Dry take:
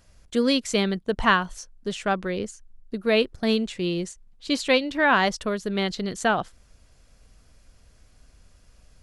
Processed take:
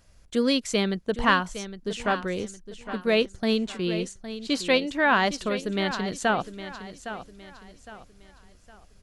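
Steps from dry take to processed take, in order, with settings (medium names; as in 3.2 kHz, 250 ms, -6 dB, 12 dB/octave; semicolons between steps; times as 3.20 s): feedback delay 811 ms, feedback 36%, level -12 dB; trim -1.5 dB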